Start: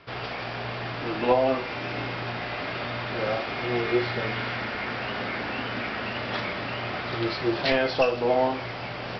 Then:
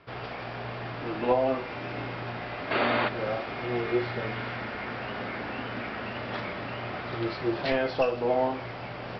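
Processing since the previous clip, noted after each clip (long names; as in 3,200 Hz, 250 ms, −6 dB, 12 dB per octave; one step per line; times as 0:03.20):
high-shelf EQ 2,900 Hz −9 dB
gain on a spectral selection 0:02.71–0:03.08, 210–4,700 Hz +11 dB
level −2.5 dB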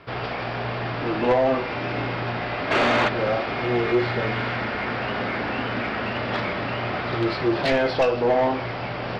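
soft clipping −22 dBFS, distortion −13 dB
level +8.5 dB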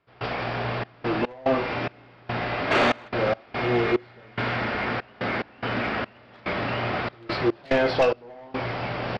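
gate pattern ".xxx.x.xx." 72 BPM −24 dB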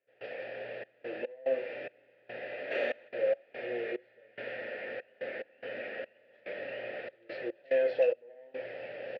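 formant filter e
level −1.5 dB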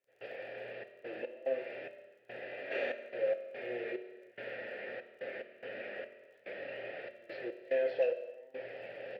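surface crackle 47 per second −58 dBFS
convolution reverb, pre-delay 3 ms, DRR 8.5 dB
level −3.5 dB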